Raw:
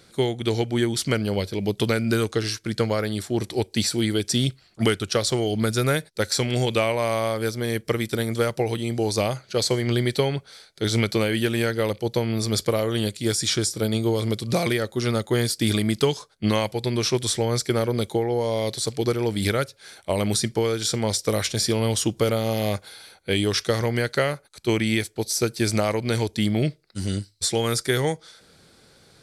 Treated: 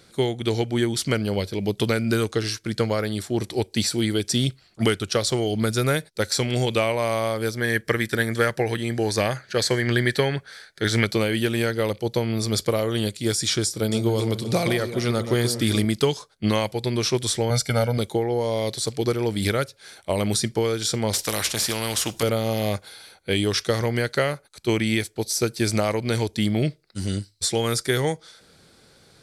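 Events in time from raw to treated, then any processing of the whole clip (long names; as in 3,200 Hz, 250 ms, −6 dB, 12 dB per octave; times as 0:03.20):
0:07.57–0:11.05: parametric band 1,700 Hz +14.5 dB 0.42 octaves
0:13.65–0:15.85: delay that swaps between a low-pass and a high-pass 133 ms, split 1,200 Hz, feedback 61%, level −8.5 dB
0:17.50–0:17.98: comb filter 1.4 ms, depth 81%
0:21.13–0:22.23: every bin compressed towards the loudest bin 2 to 1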